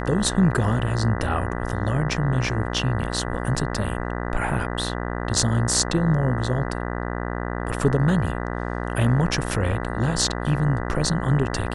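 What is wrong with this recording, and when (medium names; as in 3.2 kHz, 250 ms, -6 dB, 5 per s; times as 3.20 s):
buzz 60 Hz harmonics 33 -28 dBFS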